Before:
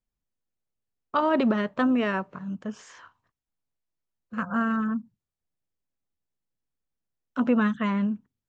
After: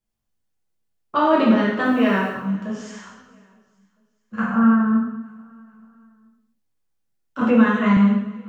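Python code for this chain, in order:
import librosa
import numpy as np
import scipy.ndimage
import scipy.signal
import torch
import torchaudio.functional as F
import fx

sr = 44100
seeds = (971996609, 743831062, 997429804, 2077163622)

y = fx.quant_dither(x, sr, seeds[0], bits=10, dither='none', at=(1.84, 2.3))
y = fx.lowpass(y, sr, hz=1600.0, slope=12, at=(4.53, 4.97))
y = fx.echo_feedback(y, sr, ms=436, feedback_pct=48, wet_db=-23.5)
y = fx.rev_gated(y, sr, seeds[1], gate_ms=320, shape='falling', drr_db=-6.0)
y = fx.band_squash(y, sr, depth_pct=40, at=(7.41, 7.97))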